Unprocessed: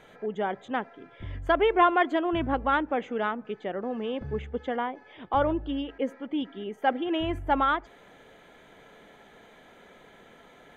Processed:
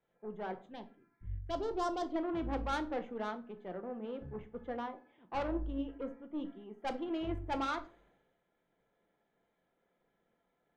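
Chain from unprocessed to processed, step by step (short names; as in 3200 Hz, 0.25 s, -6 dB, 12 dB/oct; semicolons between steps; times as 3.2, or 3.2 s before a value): high shelf 2100 Hz -11.5 dB; tube stage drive 26 dB, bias 0.4; 0.66–2.16 envelope phaser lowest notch 460 Hz, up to 3400 Hz, full sweep at -24.5 dBFS; shoebox room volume 390 m³, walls furnished, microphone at 0.8 m; three-band expander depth 70%; gain -6.5 dB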